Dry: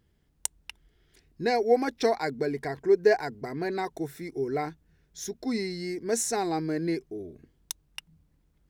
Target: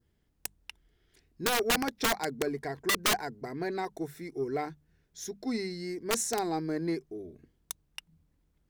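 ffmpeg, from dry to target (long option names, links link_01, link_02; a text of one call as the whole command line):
ffmpeg -i in.wav -af "aeval=exprs='0.355*(cos(1*acos(clip(val(0)/0.355,-1,1)))-cos(1*PI/2))+0.0501*(cos(3*acos(clip(val(0)/0.355,-1,1)))-cos(3*PI/2))+0.00501*(cos(7*acos(clip(val(0)/0.355,-1,1)))-cos(7*PI/2))':channel_layout=same,adynamicequalizer=threshold=0.002:dfrequency=2700:dqfactor=1.5:tfrequency=2700:tqfactor=1.5:attack=5:release=100:ratio=0.375:range=2.5:mode=cutabove:tftype=bell,aeval=exprs='(mod(13.3*val(0)+1,2)-1)/13.3':channel_layout=same,bandreject=frequency=50:width_type=h:width=6,bandreject=frequency=100:width_type=h:width=6,bandreject=frequency=150:width_type=h:width=6,bandreject=frequency=200:width_type=h:width=6,volume=3dB" out.wav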